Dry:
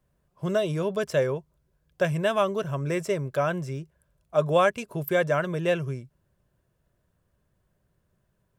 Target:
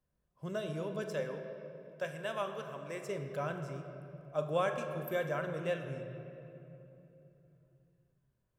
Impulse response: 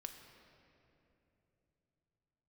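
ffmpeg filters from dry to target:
-filter_complex "[0:a]asettb=1/sr,asplit=3[a][b][c];[a]atrim=end=1.054[d];[b]atrim=start=1.05:end=3.09,asetpts=PTS-STARTPTS,afade=t=in:d=0.004:c=qsin,afade=t=out:st=2.036:d=0.004:c=qsin,highpass=f=450:p=1[e];[c]atrim=start=3.086[f];[d][e]acrossfade=d=0.004:c1=hsin:c2=qsin[g];[g][f]acrossfade=d=0.004:c1=qsin:c2=hsin[h];[1:a]atrim=start_sample=2205[i];[h][i]afir=irnorm=-1:irlink=0,volume=-6.5dB"

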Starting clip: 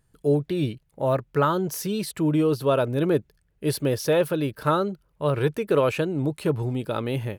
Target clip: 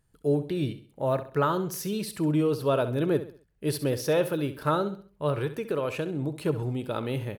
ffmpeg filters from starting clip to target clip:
-filter_complex "[0:a]asettb=1/sr,asplit=3[a][b][c];[a]atrim=end=5.324[d];[b]atrim=start=5.32:end=6.36,asetpts=PTS-STARTPTS,afade=t=in:d=0.004:c=qsin,afade=t=out:st=1.036:d=0.004:c=qsin,acompressor=threshold=-23dB:ratio=3[e];[c]atrim=start=6.356[f];[d][e]acrossfade=d=0.004:c1=hsin:c2=qsin[g];[g][f]acrossfade=d=0.004:c1=qsin:c2=hsin,aecho=1:1:66|132|198|264:0.237|0.0877|0.0325|0.012,volume=-3.5dB"

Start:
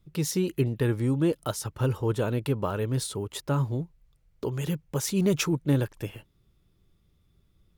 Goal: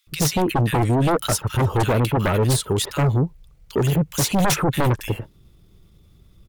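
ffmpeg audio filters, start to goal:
-filter_complex "[0:a]acrossover=split=1700[a][b];[a]adelay=70[c];[c][b]amix=inputs=2:normalize=0,aeval=exprs='0.251*sin(PI/2*3.98*val(0)/0.251)':c=same,atempo=1.2,volume=-2.5dB"

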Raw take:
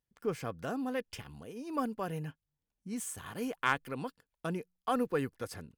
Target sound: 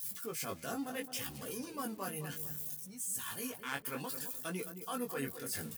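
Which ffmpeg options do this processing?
-filter_complex "[0:a]aeval=exprs='val(0)+0.5*0.00891*sgn(val(0))':c=same,crystalizer=i=7.5:c=0,afftdn=nr=14:nf=-40,areverse,acompressor=threshold=-35dB:ratio=12,areverse,flanger=delay=15.5:depth=6.3:speed=0.66,highpass=110,asplit=2[a][b];[b]adelay=216,lowpass=f=1.3k:p=1,volume=-9dB,asplit=2[c][d];[d]adelay=216,lowpass=f=1.3k:p=1,volume=0.38,asplit=2[e][f];[f]adelay=216,lowpass=f=1.3k:p=1,volume=0.38,asplit=2[g][h];[h]adelay=216,lowpass=f=1.3k:p=1,volume=0.38[i];[a][c][e][g][i]amix=inputs=5:normalize=0,volume=2dB"

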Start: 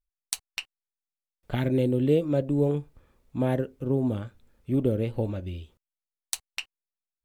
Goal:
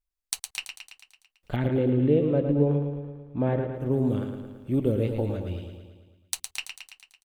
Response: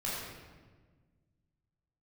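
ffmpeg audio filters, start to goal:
-filter_complex "[0:a]asettb=1/sr,asplit=3[a][b][c];[a]atrim=end=1.564[d];[b]atrim=start=1.56:end=3.74,asetpts=PTS-STARTPTS,afade=t=in:d=0.004:c=qsin,afade=t=out:st=2.176:d=0.004:c=qsin,lowpass=2.2k[e];[c]atrim=start=3.736[f];[d][e]acrossfade=d=0.004:c1=hsin:c2=qsin[g];[g][f]acrossfade=d=0.004:c1=qsin:c2=hsin,aecho=1:1:111|222|333|444|555|666|777|888:0.447|0.268|0.161|0.0965|0.0579|0.0347|0.0208|0.0125"

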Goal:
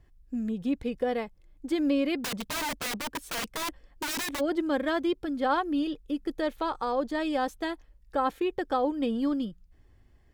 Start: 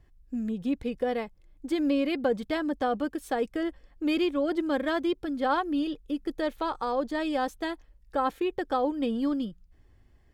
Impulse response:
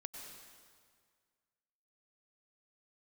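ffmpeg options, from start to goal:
-filter_complex "[0:a]asplit=3[a][b][c];[a]afade=t=out:st=2.2:d=0.02[d];[b]aeval=exprs='(mod(23.7*val(0)+1,2)-1)/23.7':c=same,afade=t=in:st=2.2:d=0.02,afade=t=out:st=4.39:d=0.02[e];[c]afade=t=in:st=4.39:d=0.02[f];[d][e][f]amix=inputs=3:normalize=0"

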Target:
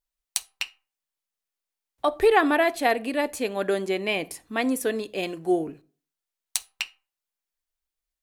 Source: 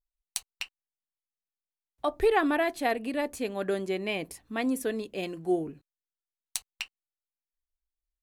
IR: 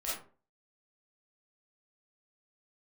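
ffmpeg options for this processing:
-filter_complex "[0:a]lowshelf=f=190:g=-10,asplit=2[a][b];[1:a]atrim=start_sample=2205,lowshelf=f=260:g=7[c];[b][c]afir=irnorm=-1:irlink=0,volume=-23.5dB[d];[a][d]amix=inputs=2:normalize=0,volume=6dB"

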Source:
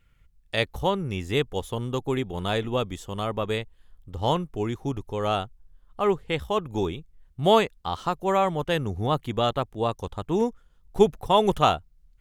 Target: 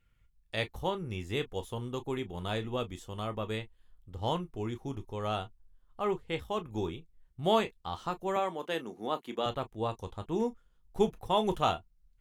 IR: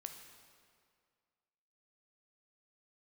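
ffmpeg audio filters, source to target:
-filter_complex "[0:a]asettb=1/sr,asplit=3[a][b][c];[a]atrim=end=8.364[d];[b]atrim=start=8.36:end=9.46,asetpts=PTS-STARTPTS,afade=t=in:d=0.004:c=qsin,afade=t=out:st=1.096:d=0.004:c=qsin,highpass=f=220:w=0.5412,highpass=f=220:w=1.3066[e];[c]atrim=start=9.456[f];[d][e]acrossfade=d=0.004:c1=hsin:c2=qsin[g];[g][f]acrossfade=d=0.004:c1=qsin:c2=hsin[h];[1:a]atrim=start_sample=2205,atrim=end_sample=3528,asetrate=88200,aresample=44100[i];[h][i]afir=irnorm=-1:irlink=0,volume=3dB"

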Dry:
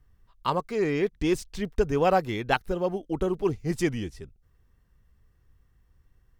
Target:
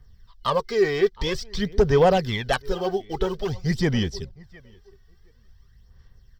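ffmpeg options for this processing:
-filter_complex "[0:a]asplit=2[a][b];[b]acrusher=bits=5:mode=log:mix=0:aa=0.000001,volume=-11.5dB[c];[a][c]amix=inputs=2:normalize=0,acrossover=split=3000[d][e];[e]acompressor=threshold=-44dB:ratio=4:attack=1:release=60[f];[d][f]amix=inputs=2:normalize=0,superequalizer=6b=0.355:11b=1.58:13b=2.82:14b=3.98:16b=0.398,asplit=2[g][h];[h]adelay=713,lowpass=f=1.6k:p=1,volume=-21dB,asplit=2[i][j];[j]adelay=713,lowpass=f=1.6k:p=1,volume=0.18[k];[i][k]amix=inputs=2:normalize=0[l];[g][l]amix=inputs=2:normalize=0,aeval=exprs='0.562*(cos(1*acos(clip(val(0)/0.562,-1,1)))-cos(1*PI/2))+0.224*(cos(5*acos(clip(val(0)/0.562,-1,1)))-cos(5*PI/2))+0.00316*(cos(7*acos(clip(val(0)/0.562,-1,1)))-cos(7*PI/2))+0.00501*(cos(8*acos(clip(val(0)/0.562,-1,1)))-cos(8*PI/2))':c=same,aphaser=in_gain=1:out_gain=1:delay=2.7:decay=0.54:speed=0.49:type=sinusoidal,volume=-8.5dB"

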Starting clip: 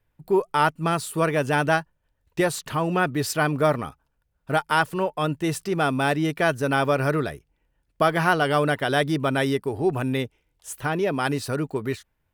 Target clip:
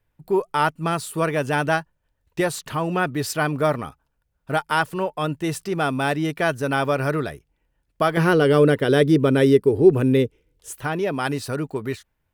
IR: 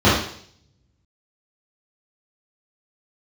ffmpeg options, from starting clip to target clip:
-filter_complex "[0:a]asettb=1/sr,asplit=3[a][b][c];[a]atrim=end=8.174[d];[b]atrim=start=8.17:end=10.71,asetpts=PTS-STARTPTS,afade=t=in:d=0.004:c=qsin,afade=t=out:st=2.536:d=0.004:c=qsin,lowshelf=f=580:t=q:w=3:g=6[e];[c]atrim=start=10.706[f];[d][e]acrossfade=d=0.004:c1=hsin:c2=qsin[g];[g][f]acrossfade=d=0.004:c1=qsin:c2=hsin"

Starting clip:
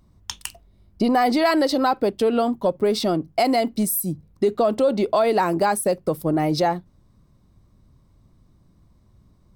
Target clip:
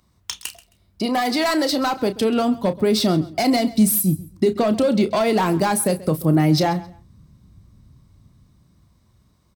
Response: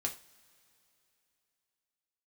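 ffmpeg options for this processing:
-filter_complex "[0:a]highpass=46,tiltshelf=f=890:g=-6,acrossover=split=250[a][b];[a]dynaudnorm=f=430:g=9:m=15dB[c];[b]asoftclip=type=hard:threshold=-17dB[d];[c][d]amix=inputs=2:normalize=0,asplit=2[e][f];[f]adelay=32,volume=-11.5dB[g];[e][g]amix=inputs=2:normalize=0,asplit=2[h][i];[i]aecho=0:1:133|266:0.112|0.0247[j];[h][j]amix=inputs=2:normalize=0"

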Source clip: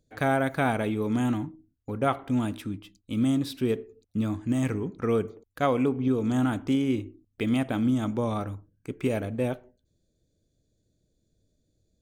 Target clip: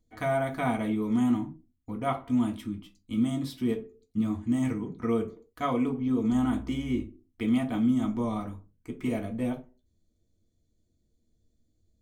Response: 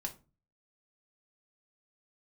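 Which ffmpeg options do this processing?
-filter_complex "[0:a]asettb=1/sr,asplit=3[a][b][c];[a]atrim=end=6.324[d];[b]atrim=start=6.32:end=7.05,asetpts=PTS-STARTPTS,afade=t=in:d=0.004:c=qsin,afade=t=out:st=0.726:d=0.004:c=qsin,aeval=exprs='val(0)+0.00708*(sin(2*PI*60*n/s)+sin(2*PI*2*60*n/s)/2+sin(2*PI*3*60*n/s)/3+sin(2*PI*4*60*n/s)/4+sin(2*PI*5*60*n/s)/5)':c=same[e];[c]atrim=start=7.046[f];[d][e]acrossfade=d=0.004:c1=hsin:c2=qsin[g];[g][f]acrossfade=d=0.004:c1=qsin:c2=hsin[h];[1:a]atrim=start_sample=2205,afade=t=out:st=0.19:d=0.01,atrim=end_sample=8820,asetrate=52920,aresample=44100[i];[h][i]afir=irnorm=-1:irlink=0,volume=-1.5dB"

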